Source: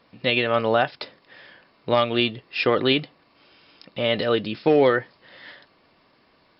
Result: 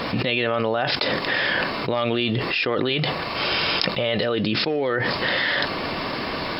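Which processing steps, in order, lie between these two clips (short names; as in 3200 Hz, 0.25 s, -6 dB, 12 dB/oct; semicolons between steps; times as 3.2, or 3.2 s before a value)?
2.89–4.24 bell 270 Hz -8.5 dB 0.47 oct; fast leveller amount 100%; gain -7.5 dB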